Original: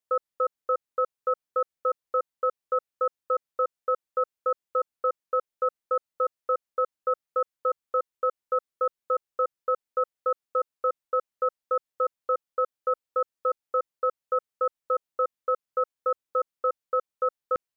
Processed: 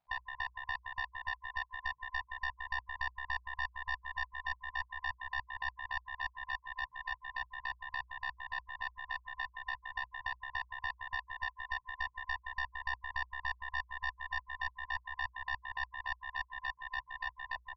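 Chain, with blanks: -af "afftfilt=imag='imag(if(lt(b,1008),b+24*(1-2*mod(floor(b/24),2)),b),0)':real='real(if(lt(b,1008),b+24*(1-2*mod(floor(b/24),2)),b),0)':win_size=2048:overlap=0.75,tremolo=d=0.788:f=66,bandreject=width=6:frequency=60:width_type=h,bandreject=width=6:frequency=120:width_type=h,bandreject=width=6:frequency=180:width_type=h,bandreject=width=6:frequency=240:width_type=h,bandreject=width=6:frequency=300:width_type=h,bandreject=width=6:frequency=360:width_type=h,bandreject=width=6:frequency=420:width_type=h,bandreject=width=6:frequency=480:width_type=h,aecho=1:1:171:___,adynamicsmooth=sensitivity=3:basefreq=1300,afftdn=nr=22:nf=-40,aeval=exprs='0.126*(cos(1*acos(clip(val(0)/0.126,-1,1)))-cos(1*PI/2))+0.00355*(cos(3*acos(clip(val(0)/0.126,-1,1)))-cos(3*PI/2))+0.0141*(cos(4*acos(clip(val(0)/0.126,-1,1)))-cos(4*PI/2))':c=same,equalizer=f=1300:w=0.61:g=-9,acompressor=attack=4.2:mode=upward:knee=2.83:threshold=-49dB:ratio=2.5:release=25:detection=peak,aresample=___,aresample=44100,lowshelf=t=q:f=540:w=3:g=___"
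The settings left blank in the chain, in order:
0.562, 11025, -9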